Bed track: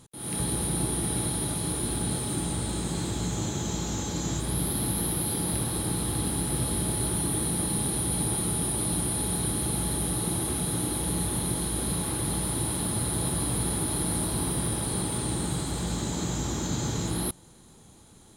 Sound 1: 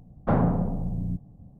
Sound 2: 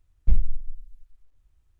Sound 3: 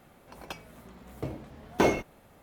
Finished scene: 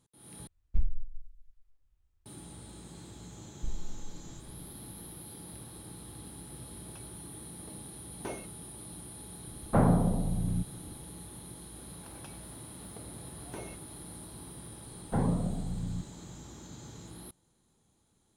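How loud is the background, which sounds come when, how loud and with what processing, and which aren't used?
bed track -18 dB
0.47 replace with 2 -9 dB
3.36 add 2 -8.5 dB + compressor 2.5:1, threshold -23 dBFS
6.45 add 3 -17 dB
9.46 add 1 -1.5 dB
11.74 add 3 -5.5 dB + compressor 2.5:1, threshold -43 dBFS
14.85 add 1 -6 dB + cascading phaser rising 1.9 Hz

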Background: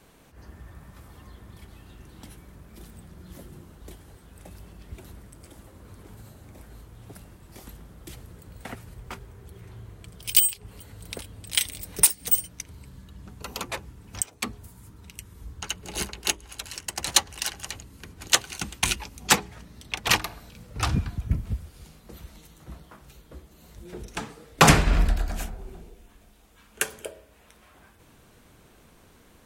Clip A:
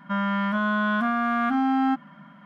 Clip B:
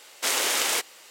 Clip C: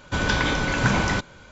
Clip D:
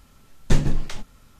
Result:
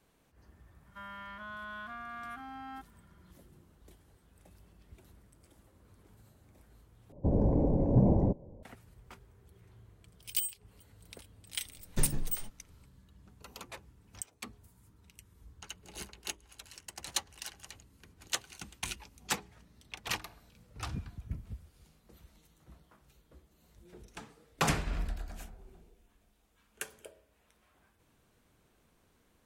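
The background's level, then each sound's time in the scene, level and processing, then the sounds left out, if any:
background -14 dB
0.86 add A -14.5 dB + HPF 1200 Hz 6 dB/oct
7.12 replace with C -1 dB + inverse Chebyshev low-pass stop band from 1300 Hz
11.47 add D -13 dB
not used: B

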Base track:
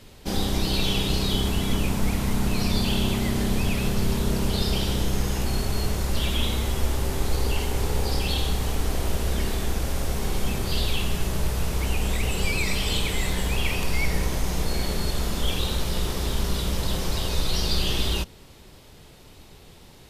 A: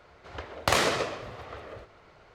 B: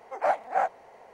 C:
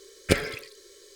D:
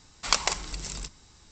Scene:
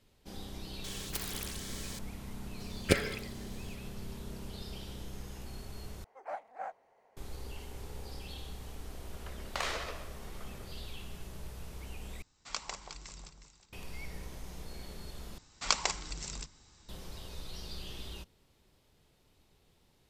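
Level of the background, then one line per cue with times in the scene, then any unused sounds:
base track -19.5 dB
0.84 add C -17.5 dB + spectral compressor 10:1
2.6 add C -4.5 dB
6.04 replace with B -16 dB
8.88 add A -11.5 dB + weighting filter A
12.22 replace with D -15 dB + echo with dull and thin repeats by turns 0.181 s, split 1200 Hz, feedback 51%, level -4.5 dB
15.38 replace with D -5 dB

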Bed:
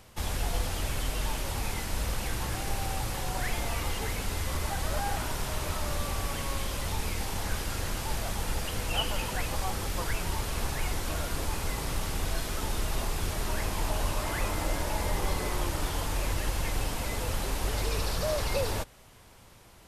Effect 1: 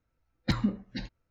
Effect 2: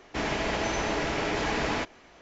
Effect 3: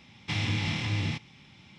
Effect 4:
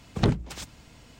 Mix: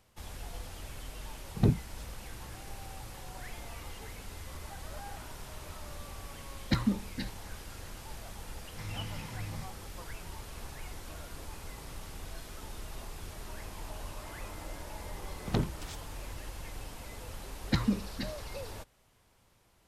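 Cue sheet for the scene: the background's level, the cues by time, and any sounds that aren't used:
bed -12.5 dB
1.4 add 4 -3.5 dB + spectral expander 1.5:1
6.23 add 1 -1 dB
8.49 add 3 -10.5 dB + fixed phaser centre 1200 Hz, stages 4
15.31 add 4 -7.5 dB
17.24 add 1 -1 dB
not used: 2

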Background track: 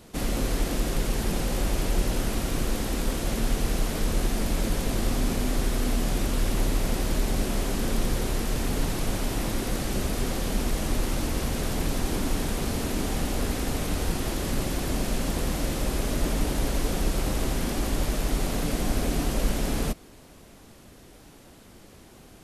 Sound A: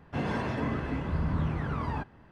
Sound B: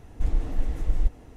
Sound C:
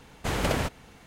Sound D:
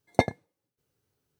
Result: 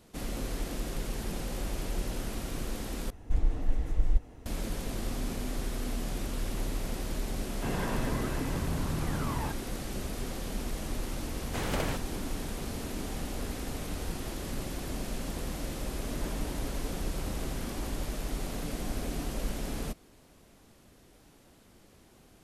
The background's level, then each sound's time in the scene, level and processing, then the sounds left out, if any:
background track -8.5 dB
3.1 replace with B -2.5 dB
7.49 add A -1 dB + limiter -24 dBFS
11.29 add C -6 dB
15.91 add A -16.5 dB
not used: D

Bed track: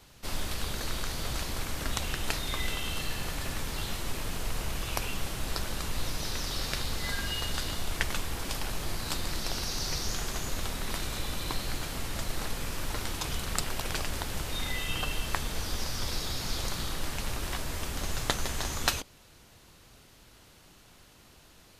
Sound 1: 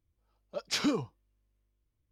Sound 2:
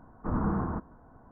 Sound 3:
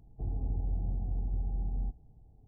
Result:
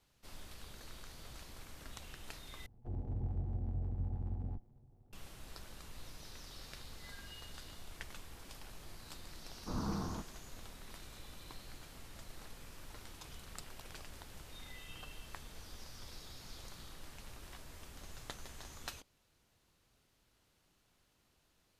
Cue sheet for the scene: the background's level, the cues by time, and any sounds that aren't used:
bed track -18 dB
2.66 replace with 3 -3 dB + minimum comb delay 8.2 ms
9.42 add 2 -9.5 dB
not used: 1

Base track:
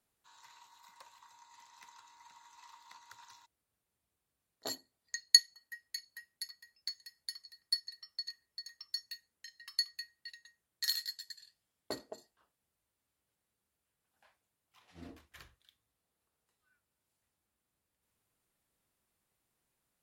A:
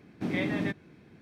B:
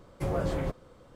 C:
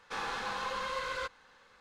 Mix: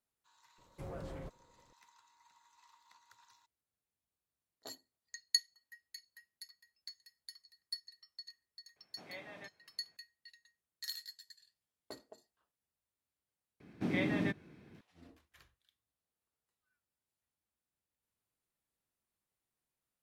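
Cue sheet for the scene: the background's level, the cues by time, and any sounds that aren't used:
base track -9 dB
0.58 add B -17.5 dB + sample leveller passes 1
8.76 add A -15.5 dB + resonant low shelf 430 Hz -12 dB, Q 1.5
13.6 add A -3.5 dB
not used: C

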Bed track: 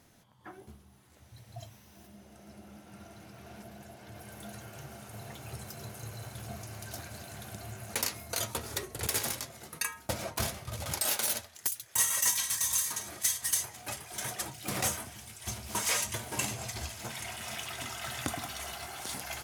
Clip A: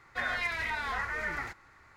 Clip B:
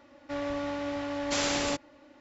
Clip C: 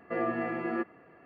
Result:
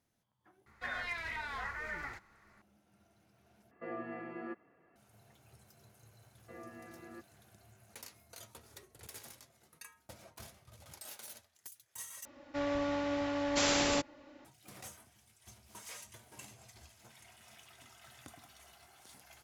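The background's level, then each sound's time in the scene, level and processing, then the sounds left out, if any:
bed track -19 dB
0.66 add A -7 dB
3.71 replace with C -11.5 dB
6.38 add C -17.5 dB + bell 610 Hz -3 dB 2.8 oct
12.25 replace with B -1 dB

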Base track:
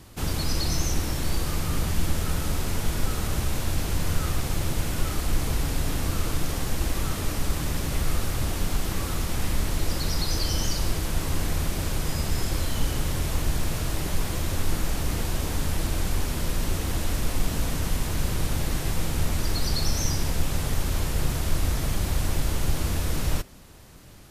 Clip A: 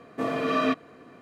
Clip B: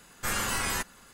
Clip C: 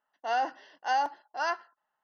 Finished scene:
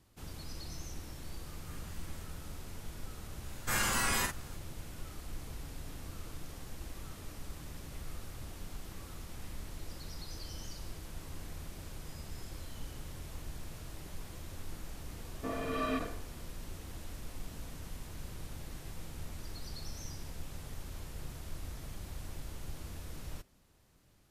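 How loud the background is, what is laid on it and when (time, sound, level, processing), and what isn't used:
base track -18.5 dB
1.44 add B -13.5 dB + compressor, threshold -42 dBFS
3.44 add B -3 dB + doubler 48 ms -4.5 dB
15.25 add A -10 dB + sustainer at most 99 dB/s
not used: C

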